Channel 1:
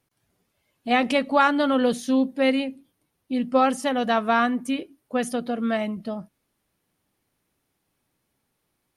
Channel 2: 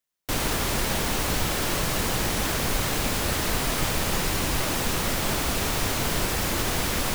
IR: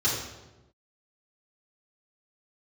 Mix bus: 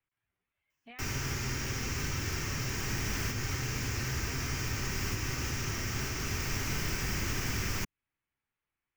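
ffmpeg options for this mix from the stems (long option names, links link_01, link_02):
-filter_complex "[0:a]equalizer=frequency=210:width=0.72:gain=-10.5,alimiter=level_in=3.5dB:limit=-24dB:level=0:latency=1,volume=-3.5dB,volume=-11dB,asplit=2[link_01][link_02];[1:a]highshelf=frequency=7300:width_type=q:width=3:gain=-12,aexciter=amount=7.8:drive=8.7:freq=5700,adelay=700,volume=-1.5dB,asplit=2[link_03][link_04];[link_04]volume=-19dB[link_05];[link_02]apad=whole_len=345952[link_06];[link_03][link_06]sidechaincompress=threshold=-50dB:ratio=8:attack=16:release=909[link_07];[2:a]atrim=start_sample=2205[link_08];[link_05][link_08]afir=irnorm=-1:irlink=0[link_09];[link_01][link_07][link_09]amix=inputs=3:normalize=0,highshelf=frequency=3600:width_type=q:width=1.5:gain=-13.5,acrossover=split=210|480|1300|5100[link_10][link_11][link_12][link_13][link_14];[link_10]acompressor=threshold=-32dB:ratio=4[link_15];[link_11]acompressor=threshold=-41dB:ratio=4[link_16];[link_12]acompressor=threshold=-49dB:ratio=4[link_17];[link_13]acompressor=threshold=-39dB:ratio=4[link_18];[link_14]acompressor=threshold=-40dB:ratio=4[link_19];[link_15][link_16][link_17][link_18][link_19]amix=inputs=5:normalize=0,equalizer=frequency=590:width=1.3:gain=-7.5"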